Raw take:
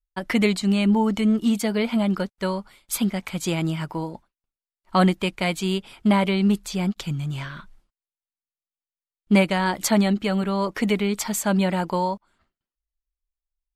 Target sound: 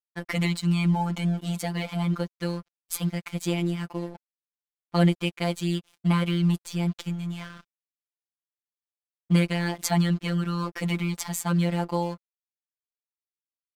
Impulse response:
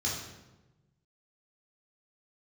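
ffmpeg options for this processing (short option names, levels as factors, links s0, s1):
-af "aeval=exprs='sgn(val(0))*max(abs(val(0))-0.00891,0)':c=same,afftfilt=real='hypot(re,im)*cos(PI*b)':imag='0':win_size=1024:overlap=0.75"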